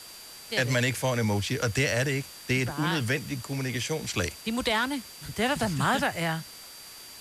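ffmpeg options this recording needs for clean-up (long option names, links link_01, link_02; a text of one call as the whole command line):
ffmpeg -i in.wav -af "bandreject=frequency=4700:width=30,afftdn=noise_reduction=28:noise_floor=-46" out.wav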